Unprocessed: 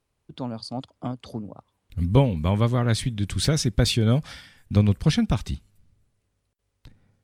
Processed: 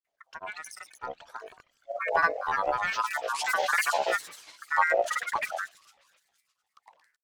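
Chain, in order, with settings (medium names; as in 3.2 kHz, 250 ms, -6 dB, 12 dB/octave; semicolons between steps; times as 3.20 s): peaking EQ 920 Hz -9 dB 1.7 oct; feedback echo behind a high-pass 118 ms, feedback 67%, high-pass 2.6 kHz, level -5.5 dB; ring modulator 1.1 kHz; granulator, pitch spread up and down by 12 st; trim -2 dB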